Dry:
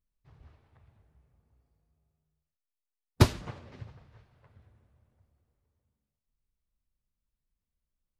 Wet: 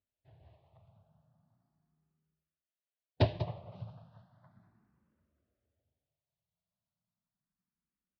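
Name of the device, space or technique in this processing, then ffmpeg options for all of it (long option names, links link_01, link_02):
barber-pole phaser into a guitar amplifier: -filter_complex "[0:a]asettb=1/sr,asplit=3[link_01][link_02][link_03];[link_01]atrim=end=3.234[link_04];[link_02]atrim=start=3.23:end=3.76,asetpts=PTS-STARTPTS,afade=type=in:duration=0.004:curve=qsin,afade=type=out:start_time=0.526:duration=0.004:curve=qsin,lowpass=frequency=2300:poles=1[link_05];[link_03]atrim=start=3.756[link_06];[link_04][link_05]acrossfade=duration=0.004:curve1=hsin:curve2=qsin[link_07];[link_07][link_06]acrossfade=duration=0.004:curve1=qsin:curve2=hsin,asplit=2[link_08][link_09];[link_09]adelay=192.4,volume=-14dB,highshelf=frequency=4000:gain=-4.33[link_10];[link_08][link_10]amix=inputs=2:normalize=0,asplit=2[link_11][link_12];[link_12]afreqshift=0.35[link_13];[link_11][link_13]amix=inputs=2:normalize=1,asoftclip=type=tanh:threshold=-16.5dB,highpass=110,equalizer=frequency=110:width_type=q:width=4:gain=4,equalizer=frequency=180:width_type=q:width=4:gain=8,equalizer=frequency=450:width_type=q:width=4:gain=-5,equalizer=frequency=650:width_type=q:width=4:gain=9,equalizer=frequency=2200:width_type=q:width=4:gain=-6,lowpass=frequency=4400:width=0.5412,lowpass=frequency=4400:width=1.3066"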